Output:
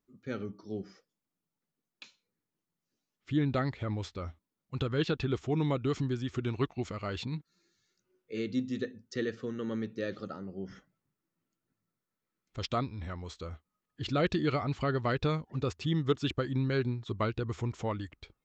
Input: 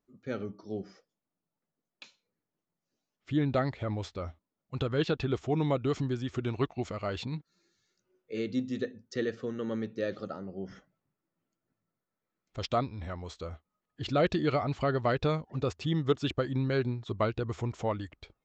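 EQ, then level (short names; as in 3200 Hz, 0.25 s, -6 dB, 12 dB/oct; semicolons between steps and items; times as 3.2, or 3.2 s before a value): bell 650 Hz -6 dB 0.84 oct; 0.0 dB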